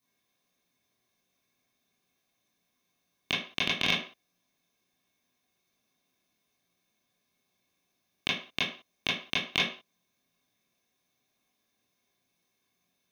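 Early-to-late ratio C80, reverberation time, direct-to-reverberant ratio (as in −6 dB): 10.5 dB, non-exponential decay, −7.0 dB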